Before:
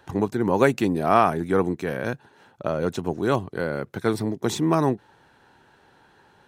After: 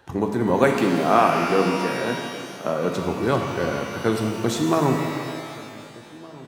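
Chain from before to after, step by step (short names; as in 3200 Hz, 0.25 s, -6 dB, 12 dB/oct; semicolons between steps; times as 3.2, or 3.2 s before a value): 0.64–2.9 HPF 140 Hz 24 dB/oct; outdoor echo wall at 260 m, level -21 dB; shimmer reverb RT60 2.2 s, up +12 st, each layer -8 dB, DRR 2.5 dB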